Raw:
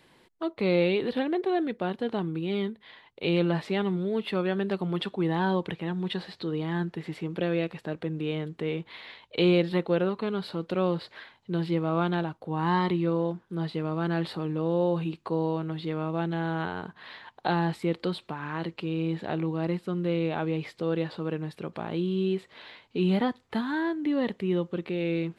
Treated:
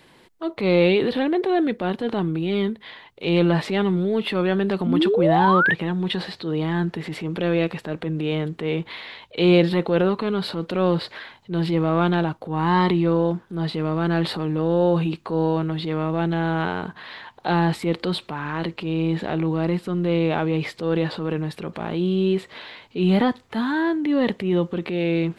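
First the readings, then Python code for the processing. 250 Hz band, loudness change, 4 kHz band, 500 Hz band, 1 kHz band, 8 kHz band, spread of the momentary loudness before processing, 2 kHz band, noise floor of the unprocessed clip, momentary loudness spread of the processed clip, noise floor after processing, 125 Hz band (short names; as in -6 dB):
+6.5 dB, +7.0 dB, +7.0 dB, +6.5 dB, +8.0 dB, n/a, 9 LU, +8.5 dB, -63 dBFS, 10 LU, -53 dBFS, +6.5 dB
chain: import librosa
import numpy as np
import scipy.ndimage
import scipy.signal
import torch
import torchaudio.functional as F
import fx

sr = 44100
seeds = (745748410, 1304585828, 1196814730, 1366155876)

y = fx.spec_paint(x, sr, seeds[0], shape='rise', start_s=4.86, length_s=0.88, low_hz=220.0, high_hz=1900.0, level_db=-26.0)
y = fx.transient(y, sr, attack_db=-6, sustain_db=4)
y = y * librosa.db_to_amplitude(7.0)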